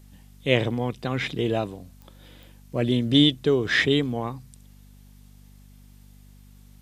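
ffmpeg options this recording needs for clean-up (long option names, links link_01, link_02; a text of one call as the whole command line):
ffmpeg -i in.wav -af "adeclick=threshold=4,bandreject=frequency=49.3:width_type=h:width=4,bandreject=frequency=98.6:width_type=h:width=4,bandreject=frequency=147.9:width_type=h:width=4,bandreject=frequency=197.2:width_type=h:width=4,bandreject=frequency=246.5:width_type=h:width=4" out.wav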